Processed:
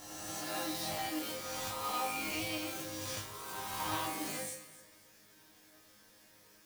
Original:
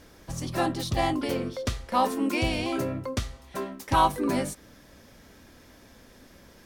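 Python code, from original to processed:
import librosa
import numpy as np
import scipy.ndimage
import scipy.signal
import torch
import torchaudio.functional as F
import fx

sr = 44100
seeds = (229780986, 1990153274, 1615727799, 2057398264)

y = fx.spec_swells(x, sr, rise_s=1.99)
y = fx.cheby_harmonics(y, sr, harmonics=(5,), levels_db=(-17,), full_scale_db=-6.5)
y = fx.quant_companded(y, sr, bits=4)
y = fx.tilt_eq(y, sr, slope=2.0)
y = fx.resonator_bank(y, sr, root=44, chord='fifth', decay_s=0.35)
y = fx.echo_alternate(y, sr, ms=133, hz=1900.0, feedback_pct=51, wet_db=-9)
y = y * 10.0 ** (-6.0 / 20.0)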